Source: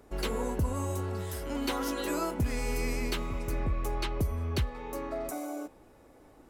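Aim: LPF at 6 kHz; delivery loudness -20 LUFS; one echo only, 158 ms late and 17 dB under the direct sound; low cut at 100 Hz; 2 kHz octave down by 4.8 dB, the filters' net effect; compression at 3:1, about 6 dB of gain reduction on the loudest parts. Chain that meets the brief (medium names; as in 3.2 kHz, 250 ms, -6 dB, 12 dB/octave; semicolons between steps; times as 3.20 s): high-pass 100 Hz; low-pass 6 kHz; peaking EQ 2 kHz -6 dB; compression 3:1, threshold -35 dBFS; delay 158 ms -17 dB; trim +19 dB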